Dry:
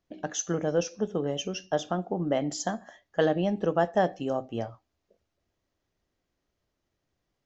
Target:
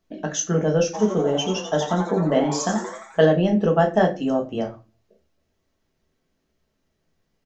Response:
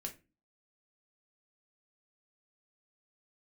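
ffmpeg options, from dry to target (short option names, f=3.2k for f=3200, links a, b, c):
-filter_complex "[0:a]asplit=3[a][b][c];[a]afade=t=out:st=0.93:d=0.02[d];[b]asplit=8[e][f][g][h][i][j][k][l];[f]adelay=87,afreqshift=150,volume=-8dB[m];[g]adelay=174,afreqshift=300,volume=-12.9dB[n];[h]adelay=261,afreqshift=450,volume=-17.8dB[o];[i]adelay=348,afreqshift=600,volume=-22.6dB[p];[j]adelay=435,afreqshift=750,volume=-27.5dB[q];[k]adelay=522,afreqshift=900,volume=-32.4dB[r];[l]adelay=609,afreqshift=1050,volume=-37.3dB[s];[e][m][n][o][p][q][r][s]amix=inputs=8:normalize=0,afade=t=in:st=0.93:d=0.02,afade=t=out:st=3.2:d=0.02[t];[c]afade=t=in:st=3.2:d=0.02[u];[d][t][u]amix=inputs=3:normalize=0[v];[1:a]atrim=start_sample=2205[w];[v][w]afir=irnorm=-1:irlink=0,volume=8.5dB"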